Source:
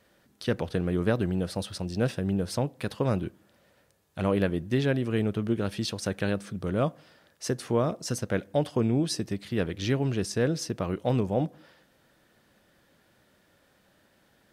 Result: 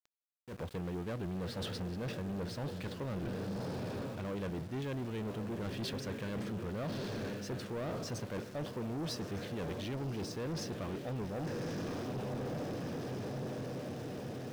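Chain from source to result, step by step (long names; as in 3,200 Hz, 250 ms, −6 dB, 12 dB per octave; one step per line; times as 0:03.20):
low-pass filter 4,600 Hz 12 dB per octave
feedback delay with all-pass diffusion 1,154 ms, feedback 56%, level −11 dB
reversed playback
downward compressor 10 to 1, threshold −35 dBFS, peak gain reduction 16 dB
reversed playback
soft clipping −40 dBFS, distortion −9 dB
volume swells 223 ms
centre clipping without the shift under −55 dBFS
level +5.5 dB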